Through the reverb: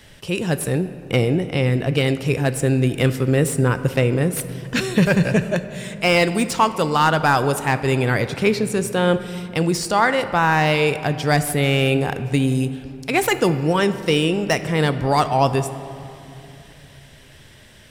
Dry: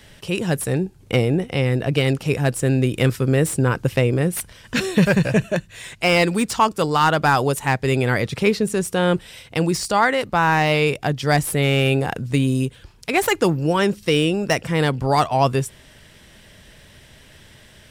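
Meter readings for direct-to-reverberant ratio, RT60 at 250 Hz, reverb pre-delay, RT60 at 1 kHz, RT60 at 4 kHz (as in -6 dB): 11.0 dB, 3.8 s, 3 ms, 2.7 s, 1.6 s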